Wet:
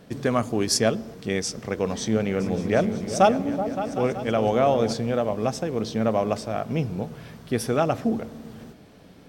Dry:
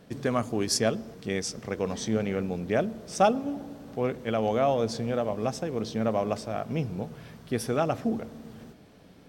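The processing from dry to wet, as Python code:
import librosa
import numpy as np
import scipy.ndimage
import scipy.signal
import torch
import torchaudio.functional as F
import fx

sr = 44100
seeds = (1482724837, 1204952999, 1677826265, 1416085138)

y = fx.echo_opening(x, sr, ms=189, hz=200, octaves=2, feedback_pct=70, wet_db=-6, at=(2.39, 4.92), fade=0.02)
y = F.gain(torch.from_numpy(y), 4.0).numpy()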